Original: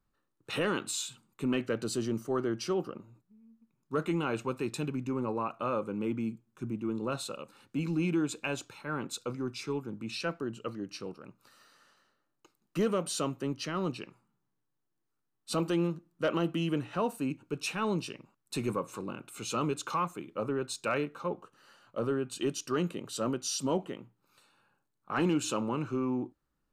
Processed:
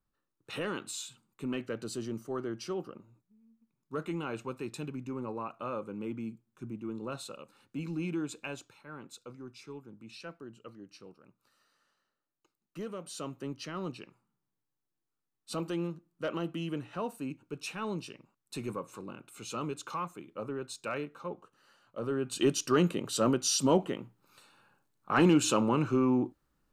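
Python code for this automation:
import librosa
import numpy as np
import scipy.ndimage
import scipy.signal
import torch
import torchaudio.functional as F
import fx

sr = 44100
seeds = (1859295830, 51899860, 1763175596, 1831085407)

y = fx.gain(x, sr, db=fx.line((8.42, -5.0), (8.88, -11.0), (12.98, -11.0), (13.4, -5.0), (21.98, -5.0), (22.41, 5.0)))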